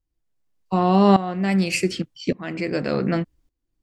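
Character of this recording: tremolo saw up 0.86 Hz, depth 85%

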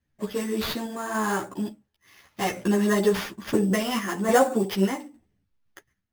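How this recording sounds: aliases and images of a low sample rate 8200 Hz, jitter 0%; random-step tremolo; a shimmering, thickened sound

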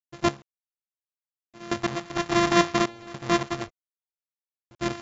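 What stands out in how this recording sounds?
a buzz of ramps at a fixed pitch in blocks of 128 samples; random-step tremolo, depth 95%; a quantiser's noise floor 10-bit, dither none; AAC

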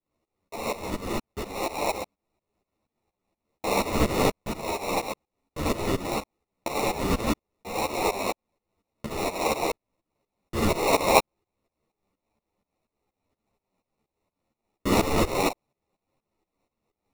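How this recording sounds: phasing stages 4, 0.65 Hz, lowest notch 590–2400 Hz; aliases and images of a low sample rate 1600 Hz, jitter 0%; tremolo saw up 4.2 Hz, depth 90%; a shimmering, thickened sound

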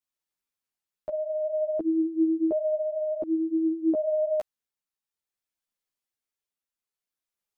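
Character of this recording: tremolo triangle 0.56 Hz, depth 40%; a shimmering, thickened sound

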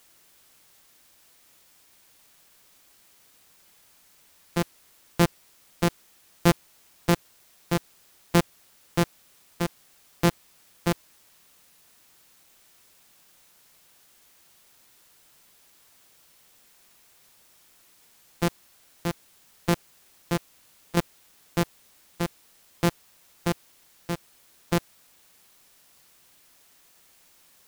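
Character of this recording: a buzz of ramps at a fixed pitch in blocks of 256 samples; tremolo saw down 0.62 Hz, depth 65%; a quantiser's noise floor 10-bit, dither triangular

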